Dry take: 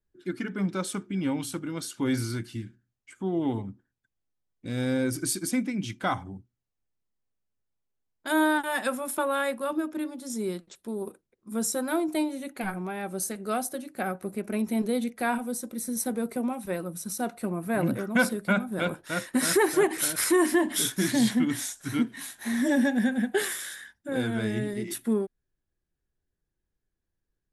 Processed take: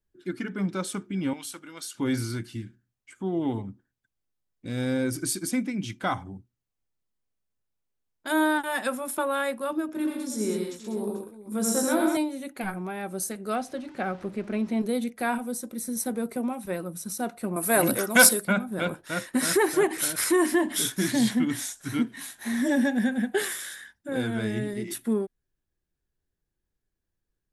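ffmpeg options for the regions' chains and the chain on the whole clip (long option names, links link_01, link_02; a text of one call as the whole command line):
ffmpeg -i in.wav -filter_complex "[0:a]asettb=1/sr,asplit=3[link_01][link_02][link_03];[link_01]atrim=end=1.334[link_04];[link_02]atrim=start=1.33:end=1.95,asetpts=PTS-STARTPTS,afade=type=in:duration=0.004:curve=qsin,afade=type=out:start_time=0.616:duration=0.004:curve=qsin,highpass=frequency=1200:poles=1,volume=28dB,asoftclip=hard,volume=-28dB[link_05];[link_03]atrim=start=1.946[link_06];[link_04][link_05]acrossfade=duration=0.004:curve1=hsin:curve2=qsin[link_07];[link_07][link_06]acrossfade=duration=0.004:curve1=qsin:curve2=hsin,asettb=1/sr,asplit=3[link_08][link_09][link_10];[link_08]atrim=end=9.874[link_11];[link_09]atrim=start=9.87:end=12.17,asetpts=PTS-STARTPTS,afade=type=in:duration=0.004:curve=qsin,afade=type=out:start_time=2.296:duration=0.004:curve=qsin,asplit=2[link_12][link_13];[link_13]adelay=19,volume=-6.5dB[link_14];[link_12][link_14]amix=inputs=2:normalize=0,atrim=end_sample=101430,aecho=1:1:85|129|194|441:0.668|0.562|0.447|0.178,atrim=end_sample=101430[link_15];[link_10]atrim=start=12.166[link_16];[link_11][link_15]acrossfade=duration=0.004:curve1=hsin:curve2=qsin[link_17];[link_17][link_16]acrossfade=duration=0.004:curve1=qsin:curve2=hsin,asettb=1/sr,asplit=3[link_18][link_19][link_20];[link_18]atrim=end=13.554[link_21];[link_19]atrim=start=13.55:end=14.81,asetpts=PTS-STARTPTS,afade=type=in:duration=0.004:curve=qsin,afade=type=out:start_time=1.256:duration=0.004:curve=qsin,aeval=exprs='val(0)+0.5*0.00668*sgn(val(0))':channel_layout=same,lowpass=4600[link_22];[link_20]atrim=start=14.806[link_23];[link_21][link_22]acrossfade=duration=0.004:curve1=hsin:curve2=qsin[link_24];[link_24][link_23]acrossfade=duration=0.004:curve1=qsin:curve2=hsin,asettb=1/sr,asplit=3[link_25][link_26][link_27];[link_25]atrim=end=17.564[link_28];[link_26]atrim=start=17.56:end=18.45,asetpts=PTS-STARTPTS,afade=type=in:duration=0.004:curve=qsin,afade=type=out:start_time=0.886:duration=0.004:curve=qsin,bass=frequency=250:gain=-13,treble=frequency=4000:gain=14,acontrast=78[link_29];[link_27]atrim=start=18.446[link_30];[link_28][link_29]acrossfade=duration=0.004:curve1=hsin:curve2=qsin[link_31];[link_31][link_30]acrossfade=duration=0.004:curve1=qsin:curve2=hsin" out.wav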